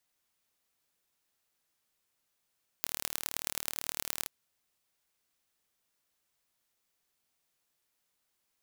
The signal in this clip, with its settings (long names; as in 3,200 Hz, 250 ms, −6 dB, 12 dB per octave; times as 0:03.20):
impulse train 38 per second, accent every 4, −3.5 dBFS 1.43 s